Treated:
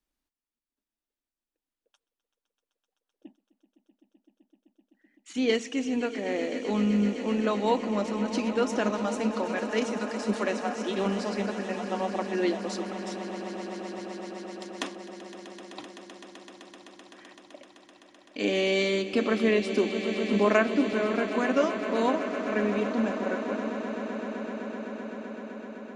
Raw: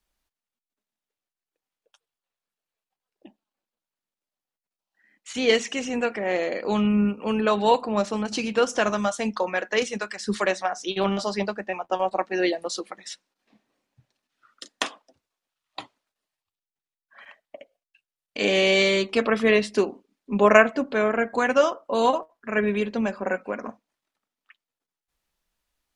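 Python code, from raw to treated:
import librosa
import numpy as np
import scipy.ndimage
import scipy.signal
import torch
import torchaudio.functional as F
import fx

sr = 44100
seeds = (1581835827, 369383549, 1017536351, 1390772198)

y = fx.peak_eq(x, sr, hz=280.0, db=11.0, octaves=0.73)
y = fx.echo_swell(y, sr, ms=128, loudest=8, wet_db=-15.5)
y = fx.band_squash(y, sr, depth_pct=40, at=(19.13, 20.93))
y = y * librosa.db_to_amplitude(-8.0)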